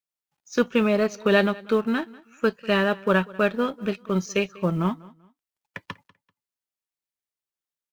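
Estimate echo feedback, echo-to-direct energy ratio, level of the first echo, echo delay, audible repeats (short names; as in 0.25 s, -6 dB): 28%, -21.5 dB, -22.0 dB, 0.194 s, 2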